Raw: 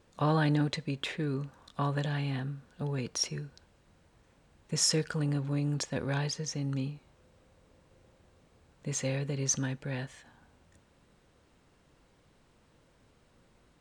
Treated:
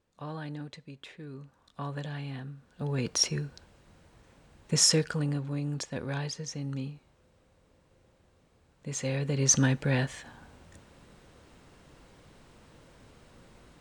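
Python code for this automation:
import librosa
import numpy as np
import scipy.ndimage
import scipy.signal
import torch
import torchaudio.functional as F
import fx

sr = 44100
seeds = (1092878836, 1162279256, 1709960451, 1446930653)

y = fx.gain(x, sr, db=fx.line((1.16, -12.0), (1.94, -5.0), (2.55, -5.0), (3.08, 5.5), (4.79, 5.5), (5.5, -2.0), (8.9, -2.0), (9.64, 9.0)))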